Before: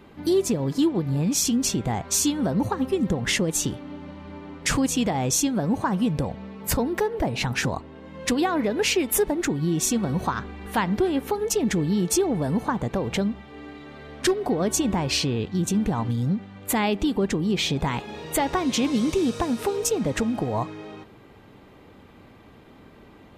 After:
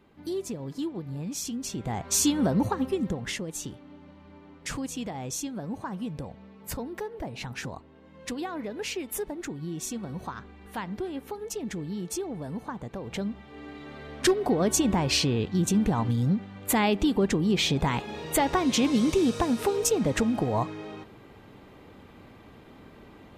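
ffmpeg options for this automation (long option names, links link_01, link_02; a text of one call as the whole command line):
ffmpeg -i in.wav -af "volume=11dB,afade=type=in:start_time=1.68:duration=0.7:silence=0.266073,afade=type=out:start_time=2.38:duration=1:silence=0.266073,afade=type=in:start_time=13.01:duration=0.88:silence=0.298538" out.wav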